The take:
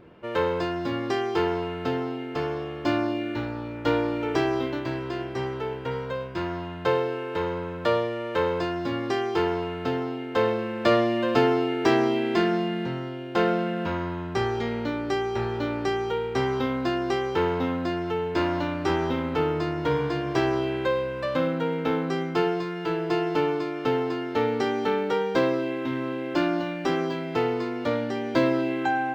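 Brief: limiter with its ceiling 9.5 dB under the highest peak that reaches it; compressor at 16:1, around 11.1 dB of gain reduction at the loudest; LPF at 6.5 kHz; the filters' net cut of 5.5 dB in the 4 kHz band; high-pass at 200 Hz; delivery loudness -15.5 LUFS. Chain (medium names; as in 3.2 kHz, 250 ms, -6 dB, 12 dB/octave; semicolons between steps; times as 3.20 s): high-pass 200 Hz; low-pass 6.5 kHz; peaking EQ 4 kHz -8 dB; compression 16:1, threshold -28 dBFS; trim +18.5 dB; peak limiter -6.5 dBFS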